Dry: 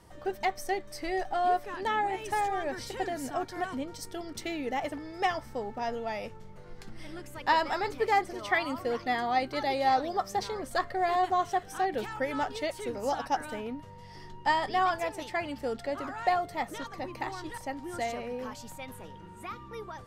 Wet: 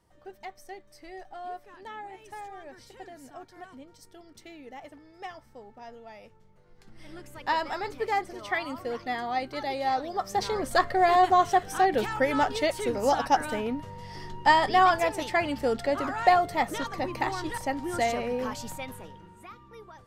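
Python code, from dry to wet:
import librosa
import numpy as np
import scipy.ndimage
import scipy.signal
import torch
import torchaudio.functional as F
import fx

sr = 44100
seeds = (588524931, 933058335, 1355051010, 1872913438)

y = fx.gain(x, sr, db=fx.line((6.72, -12.0), (7.13, -2.0), (10.09, -2.0), (10.55, 6.5), (18.7, 6.5), (19.51, -6.5)))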